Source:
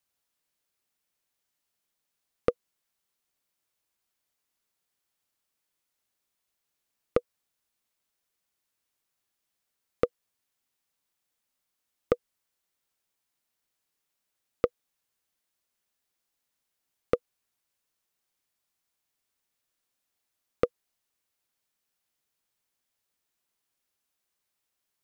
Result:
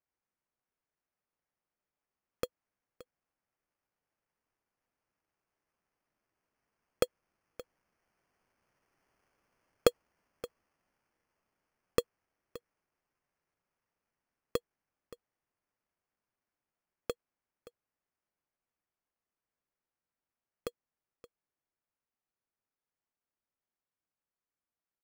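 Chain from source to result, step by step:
source passing by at 0:09.32, 7 m/s, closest 8.6 metres
Chebyshev low-pass filter 4,600 Hz, order 2
high-shelf EQ 2,400 Hz +8 dB
in parallel at −2 dB: brickwall limiter −17.5 dBFS, peak gain reduction 8.5 dB
on the sum: sample-rate reduction 3,800 Hz, jitter 0%
on a send: single-tap delay 573 ms −18 dB

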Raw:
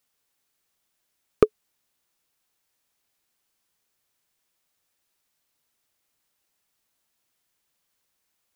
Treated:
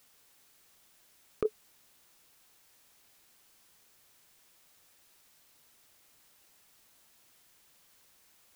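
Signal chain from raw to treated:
compressor whose output falls as the input rises −27 dBFS, ratio −1

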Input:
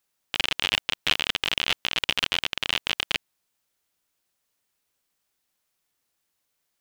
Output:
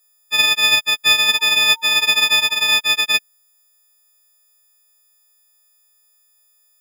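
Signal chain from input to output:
every partial snapped to a pitch grid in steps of 6 semitones
0:01.24–0:02.79: steady tone 910 Hz −42 dBFS
level +1.5 dB

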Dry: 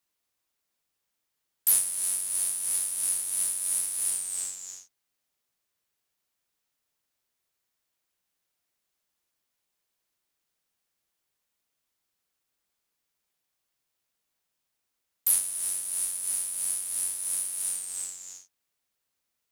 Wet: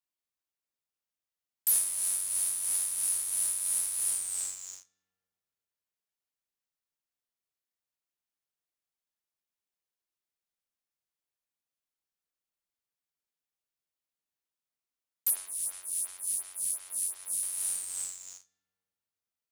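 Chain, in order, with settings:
comb and all-pass reverb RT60 2.7 s, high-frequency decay 0.4×, pre-delay 5 ms, DRR 10.5 dB
leveller curve on the samples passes 2
0:15.30–0:17.43: phaser with staggered stages 2.8 Hz
level −9 dB

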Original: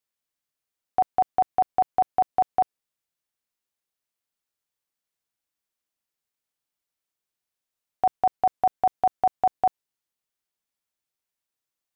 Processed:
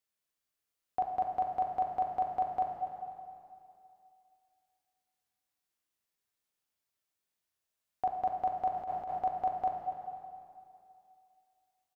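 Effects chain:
harmonic and percussive parts rebalanced percussive −12 dB
dense smooth reverb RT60 2.5 s, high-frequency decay 0.9×, DRR 2 dB
0:08.74–0:09.19: compressor whose output falls as the input rises −37 dBFS, ratio −1
repeating echo 248 ms, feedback 43%, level −12 dB
level +1.5 dB

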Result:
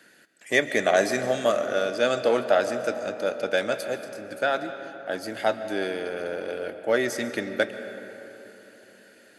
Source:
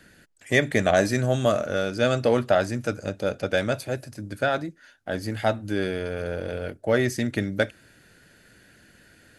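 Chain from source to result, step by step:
high-pass filter 320 Hz 12 dB per octave
comb and all-pass reverb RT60 3.8 s, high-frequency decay 0.45×, pre-delay 90 ms, DRR 9.5 dB

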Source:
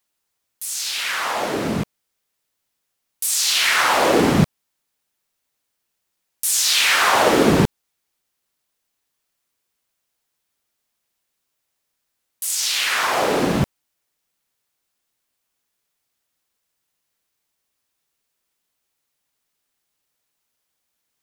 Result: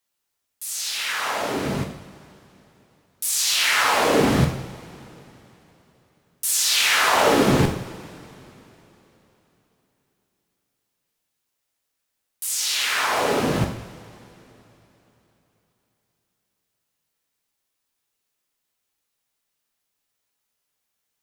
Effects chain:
coupled-rooms reverb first 0.6 s, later 3.6 s, from −20 dB, DRR 2.5 dB
frequency shifter −23 Hz
level −4 dB

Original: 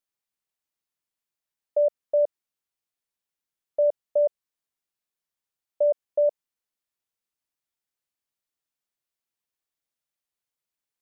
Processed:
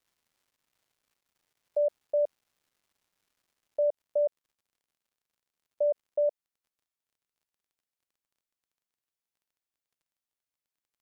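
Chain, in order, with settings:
surface crackle 400 per second −58 dBFS, from 0:03.86 82 per second, from 0:06.24 18 per second
level −5 dB

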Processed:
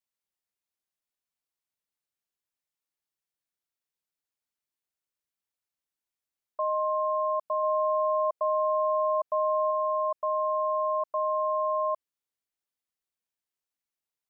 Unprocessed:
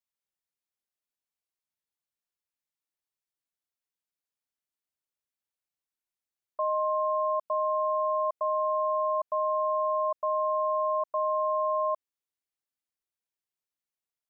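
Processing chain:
0:07.63–0:09.71: parametric band 610 Hz +2.5 dB

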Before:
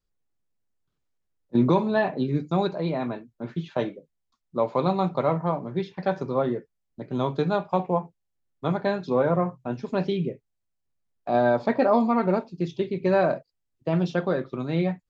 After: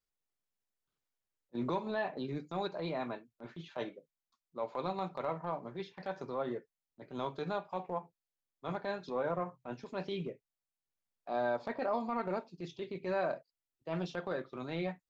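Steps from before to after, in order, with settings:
low-shelf EQ 320 Hz −11.5 dB
downward compressor 2.5 to 1, threshold −27 dBFS, peak gain reduction 6.5 dB
transient designer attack −8 dB, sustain −3 dB
level −3.5 dB

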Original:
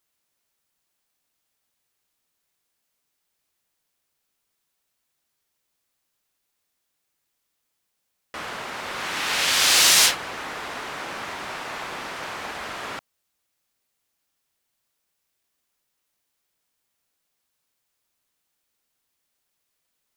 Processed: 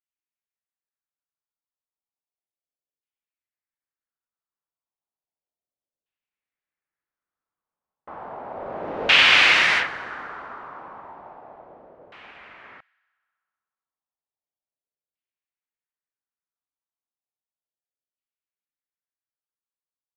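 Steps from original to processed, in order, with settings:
source passing by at 0:09.11, 11 m/s, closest 3.6 metres
delay with a high-pass on its return 63 ms, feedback 84%, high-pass 2,100 Hz, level −22 dB
auto-filter low-pass saw down 0.33 Hz 520–2,900 Hz
level +4.5 dB

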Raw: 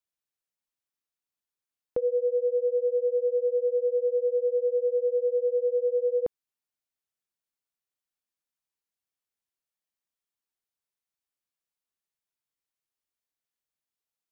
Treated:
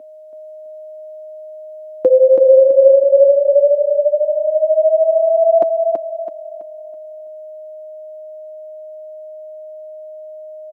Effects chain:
gliding playback speed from 87% → 180%
comb filter 5.8 ms, depth 59%
in parallel at −2 dB: brickwall limiter −25.5 dBFS, peak gain reduction 10 dB
on the sum: steady tone 620 Hz −45 dBFS
high-pass with resonance 280 Hz, resonance Q 3.5
on a send: repeating echo 329 ms, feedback 36%, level −4.5 dB
on the sum: level +7 dB

